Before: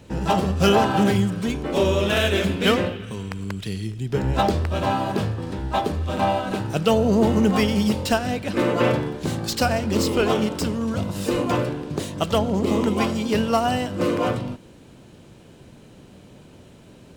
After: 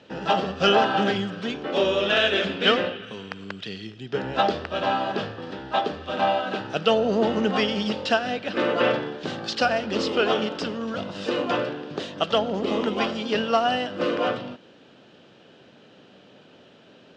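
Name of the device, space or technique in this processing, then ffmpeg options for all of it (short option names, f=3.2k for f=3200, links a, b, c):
phone earpiece: -af "highpass=340,equalizer=f=340:t=q:w=4:g=-3,equalizer=f=990:t=q:w=4:g=-7,equalizer=f=2.2k:t=q:w=4:g=-8,equalizer=f=4.1k:t=q:w=4:g=-5,lowpass=f=4.3k:w=0.5412,lowpass=f=4.3k:w=1.3066,equalizer=f=440:t=o:w=2.9:g=-5.5,volume=6dB"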